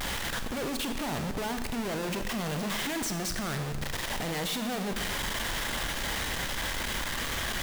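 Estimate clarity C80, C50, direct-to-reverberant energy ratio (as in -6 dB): 9.5 dB, 8.5 dB, 7.0 dB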